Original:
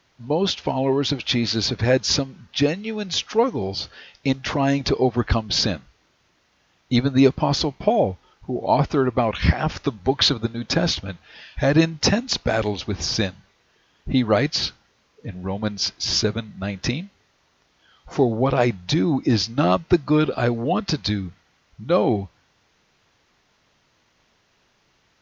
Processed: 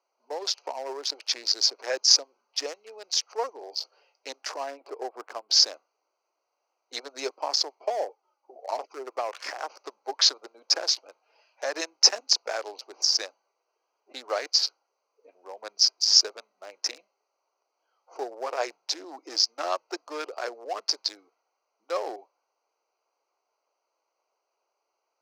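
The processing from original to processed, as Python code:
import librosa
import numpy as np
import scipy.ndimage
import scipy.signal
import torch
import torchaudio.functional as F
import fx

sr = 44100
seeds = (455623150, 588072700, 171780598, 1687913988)

y = fx.air_absorb(x, sr, metres=400.0, at=(4.63, 5.49))
y = fx.env_flanger(y, sr, rest_ms=3.9, full_db=-13.5, at=(8.08, 9.07))
y = fx.wiener(y, sr, points=25)
y = scipy.signal.sosfilt(scipy.signal.bessel(8, 740.0, 'highpass', norm='mag', fs=sr, output='sos'), y)
y = fx.high_shelf_res(y, sr, hz=4300.0, db=6.0, q=3.0)
y = y * 10.0 ** (-4.0 / 20.0)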